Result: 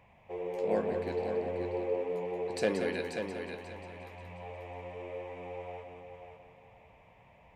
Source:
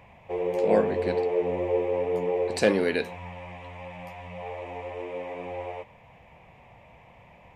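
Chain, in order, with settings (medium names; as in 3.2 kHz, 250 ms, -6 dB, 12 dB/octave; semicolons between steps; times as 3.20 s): multi-head delay 179 ms, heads first and third, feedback 42%, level -7 dB; trim -9 dB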